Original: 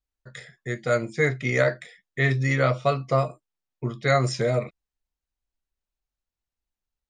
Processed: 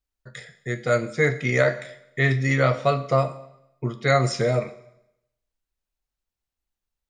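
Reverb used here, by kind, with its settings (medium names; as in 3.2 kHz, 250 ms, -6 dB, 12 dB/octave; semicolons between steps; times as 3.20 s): Schroeder reverb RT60 0.82 s, combs from 33 ms, DRR 13 dB; trim +1.5 dB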